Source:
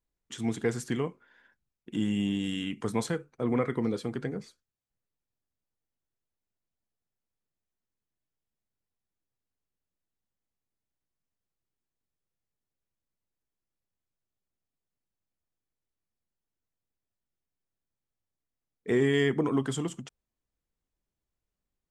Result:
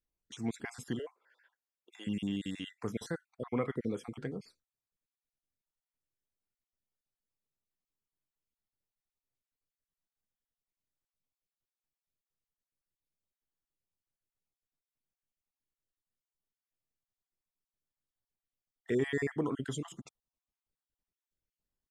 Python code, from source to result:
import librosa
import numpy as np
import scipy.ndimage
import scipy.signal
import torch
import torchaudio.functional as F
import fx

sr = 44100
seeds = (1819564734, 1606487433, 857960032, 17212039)

y = fx.spec_dropout(x, sr, seeds[0], share_pct=38)
y = fx.highpass(y, sr, hz=460.0, slope=24, at=(0.99, 2.07))
y = y * librosa.db_to_amplitude(-5.0)